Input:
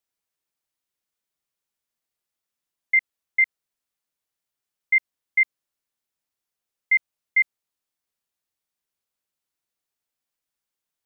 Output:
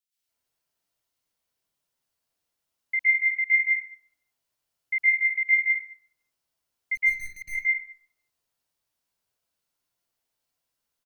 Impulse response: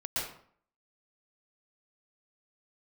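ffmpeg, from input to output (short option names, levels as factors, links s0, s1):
-filter_complex "[0:a]acrossover=split=1900[s0][s1];[s0]adelay=170[s2];[s2][s1]amix=inputs=2:normalize=0,asplit=3[s3][s4][s5];[s3]afade=t=out:st=6.94:d=0.02[s6];[s4]aeval=exprs='(tanh(89.1*val(0)+0.8)-tanh(0.8))/89.1':c=same,afade=t=in:st=6.94:d=0.02,afade=t=out:st=7.41:d=0.02[s7];[s5]afade=t=in:st=7.41:d=0.02[s8];[s6][s7][s8]amix=inputs=3:normalize=0[s9];[1:a]atrim=start_sample=2205[s10];[s9][s10]afir=irnorm=-1:irlink=0"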